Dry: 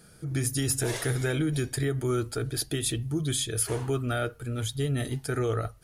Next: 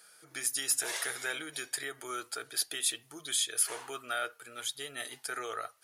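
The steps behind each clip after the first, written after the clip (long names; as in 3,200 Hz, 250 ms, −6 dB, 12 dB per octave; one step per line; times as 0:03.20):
high-pass filter 920 Hz 12 dB per octave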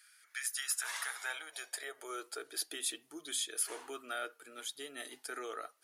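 high-pass filter sweep 1,900 Hz → 280 Hz, 0:00.23–0:02.74
level −6 dB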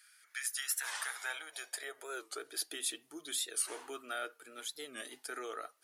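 wow of a warped record 45 rpm, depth 160 cents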